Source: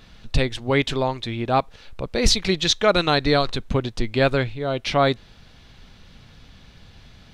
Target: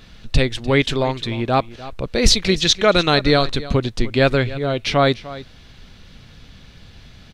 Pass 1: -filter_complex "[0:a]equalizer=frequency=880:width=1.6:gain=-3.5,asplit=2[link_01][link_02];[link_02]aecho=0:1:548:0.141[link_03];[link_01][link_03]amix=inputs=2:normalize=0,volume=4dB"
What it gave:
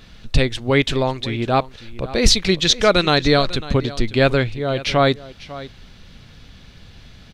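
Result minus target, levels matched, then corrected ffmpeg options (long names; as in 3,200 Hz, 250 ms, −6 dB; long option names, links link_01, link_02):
echo 249 ms late
-filter_complex "[0:a]equalizer=frequency=880:width=1.6:gain=-3.5,asplit=2[link_01][link_02];[link_02]aecho=0:1:299:0.141[link_03];[link_01][link_03]amix=inputs=2:normalize=0,volume=4dB"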